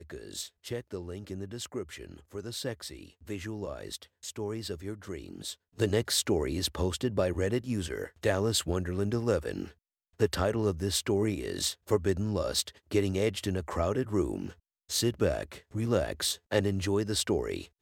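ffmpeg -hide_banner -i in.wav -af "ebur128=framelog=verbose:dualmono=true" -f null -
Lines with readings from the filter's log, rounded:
Integrated loudness:
  I:         -28.4 LUFS
  Threshold: -38.8 LUFS
Loudness range:
  LRA:         9.6 LU
  Threshold: -48.7 LUFS
  LRA low:   -36.4 LUFS
  LRA high:  -26.8 LUFS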